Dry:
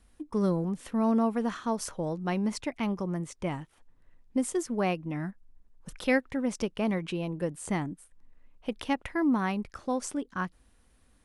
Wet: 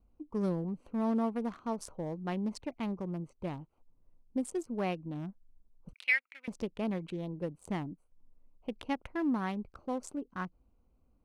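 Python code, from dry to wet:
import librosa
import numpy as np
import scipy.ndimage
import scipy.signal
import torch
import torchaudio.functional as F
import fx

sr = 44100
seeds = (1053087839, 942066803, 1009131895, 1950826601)

y = fx.wiener(x, sr, points=25)
y = fx.highpass_res(y, sr, hz=2200.0, q=4.3, at=(5.93, 6.48))
y = y * librosa.db_to_amplitude(-5.0)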